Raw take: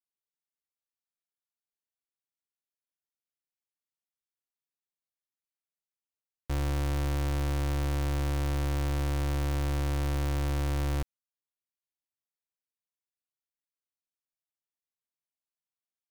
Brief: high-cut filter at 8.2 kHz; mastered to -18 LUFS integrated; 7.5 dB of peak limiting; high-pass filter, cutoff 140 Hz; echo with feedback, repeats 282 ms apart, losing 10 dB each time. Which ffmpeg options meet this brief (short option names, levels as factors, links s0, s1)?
-af "highpass=140,lowpass=8200,alimiter=level_in=1.88:limit=0.0631:level=0:latency=1,volume=0.531,aecho=1:1:282|564|846|1128:0.316|0.101|0.0324|0.0104,volume=17.8"